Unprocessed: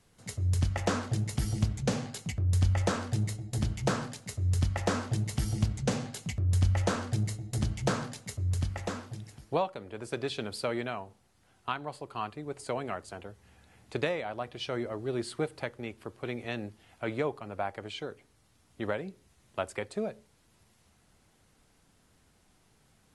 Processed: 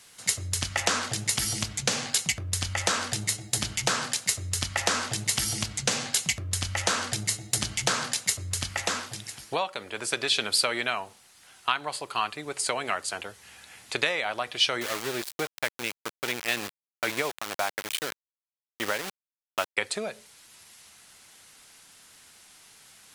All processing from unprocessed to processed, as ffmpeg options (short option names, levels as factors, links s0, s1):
-filter_complex "[0:a]asettb=1/sr,asplit=3[s0][s1][s2];[s0]atrim=end=14.814[s3];[s1]atrim=start=14.81:end=19.77,asetpts=PTS-STARTPTS,afade=t=in:d=0.004:c=qsin,afade=t=out:st=4.956:d=0.004:c=qsin,highshelf=f=4200:g=-10,aeval=exprs='val(0)*gte(abs(val(0)),0.0119)':c=same[s4];[s2]atrim=start=19.766[s5];[s3][s4]acrossfade=d=0.004:c1=hsin:c2=qsin[s6];[s6][s5]acrossfade=d=0.004:c1=qsin:c2=hsin,lowshelf=f=91:g=-9,acompressor=threshold=0.0224:ratio=2.5,tiltshelf=f=940:g=-9.5,volume=2.82"